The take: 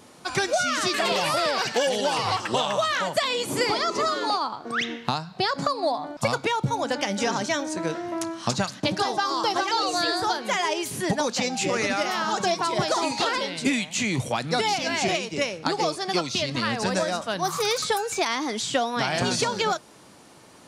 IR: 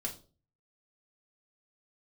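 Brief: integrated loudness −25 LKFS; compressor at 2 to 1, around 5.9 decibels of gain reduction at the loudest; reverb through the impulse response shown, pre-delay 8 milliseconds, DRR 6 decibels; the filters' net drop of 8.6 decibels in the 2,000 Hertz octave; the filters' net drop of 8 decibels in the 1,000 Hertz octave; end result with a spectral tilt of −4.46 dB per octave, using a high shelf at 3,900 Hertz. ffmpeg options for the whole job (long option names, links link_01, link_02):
-filter_complex "[0:a]equalizer=frequency=1000:width_type=o:gain=-9,equalizer=frequency=2000:width_type=o:gain=-6,highshelf=frequency=3900:gain=-8.5,acompressor=threshold=-32dB:ratio=2,asplit=2[link_01][link_02];[1:a]atrim=start_sample=2205,adelay=8[link_03];[link_02][link_03]afir=irnorm=-1:irlink=0,volume=-6.5dB[link_04];[link_01][link_04]amix=inputs=2:normalize=0,volume=7dB"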